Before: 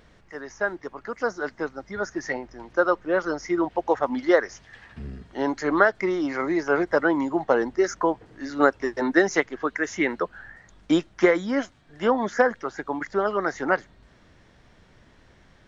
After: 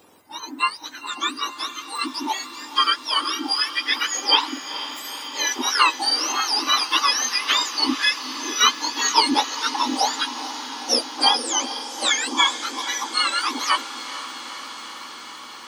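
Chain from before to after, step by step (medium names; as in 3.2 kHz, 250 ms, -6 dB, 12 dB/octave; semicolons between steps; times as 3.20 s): spectrum inverted on a logarithmic axis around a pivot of 1.3 kHz; echo that smears into a reverb 463 ms, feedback 78%, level -13 dB; trim +6.5 dB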